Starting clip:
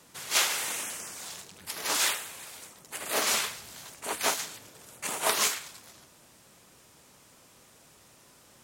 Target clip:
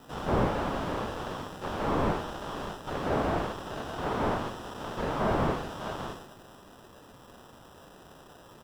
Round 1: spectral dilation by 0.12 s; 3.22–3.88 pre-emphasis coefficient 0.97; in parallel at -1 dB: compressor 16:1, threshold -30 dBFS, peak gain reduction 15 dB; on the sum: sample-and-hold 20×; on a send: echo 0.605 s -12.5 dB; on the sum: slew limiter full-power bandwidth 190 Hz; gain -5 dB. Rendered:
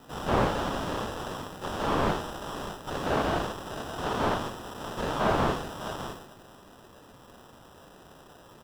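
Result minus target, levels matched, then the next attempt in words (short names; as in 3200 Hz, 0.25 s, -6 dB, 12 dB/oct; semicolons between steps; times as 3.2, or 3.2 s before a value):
slew limiter: distortion -5 dB
spectral dilation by 0.12 s; 3.22–3.88 pre-emphasis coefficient 0.97; in parallel at -1 dB: compressor 16:1, threshold -30 dBFS, peak gain reduction 15 dB; on the sum: sample-and-hold 20×; on a send: echo 0.605 s -12.5 dB; on the sum: slew limiter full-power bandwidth 86.5 Hz; gain -5 dB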